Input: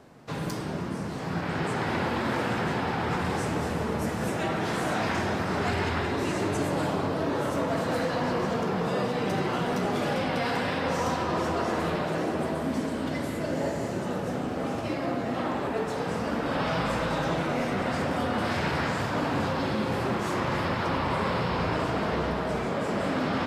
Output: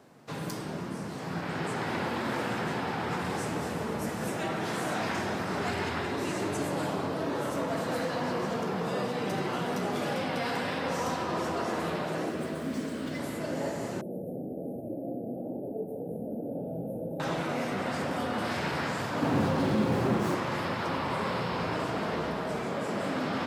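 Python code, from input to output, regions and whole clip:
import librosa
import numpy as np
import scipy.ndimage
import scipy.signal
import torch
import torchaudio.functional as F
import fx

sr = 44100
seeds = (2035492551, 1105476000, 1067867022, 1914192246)

y = fx.chain(x, sr, fx.median_filter(points=3),
    fx.peak_eq(hz=850.0, db=-8.5, octaves=0.63), at=(12.29, 13.19))
y = fx.chain(y, sr, fx.cheby2_bandstop(low_hz=1100.0, high_hz=7500.0, order=4, stop_db=40),
    fx.hum_notches(base_hz=50, count=10),
    fx.notch_comb(f0_hz=1000.0), at=(14.01, 17.2))
y = fx.chain(y, sr, fx.low_shelf(hz=480.0, db=8.5),
    fx.running_max(window=3), at=(19.22, 20.35))
y = scipy.signal.sosfilt(scipy.signal.butter(2, 110.0, 'highpass', fs=sr, output='sos'), y)
y = fx.high_shelf(y, sr, hz=7500.0, db=5.5)
y = y * 10.0 ** (-3.5 / 20.0)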